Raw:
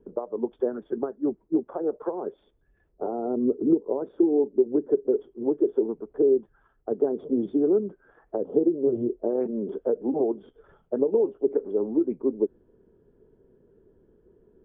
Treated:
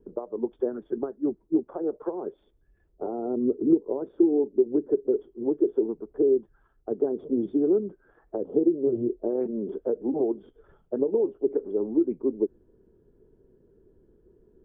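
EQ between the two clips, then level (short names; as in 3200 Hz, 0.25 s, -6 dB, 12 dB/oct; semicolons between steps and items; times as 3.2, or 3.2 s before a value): low shelf 120 Hz +8 dB; bell 340 Hz +4 dB 0.54 oct; -4.0 dB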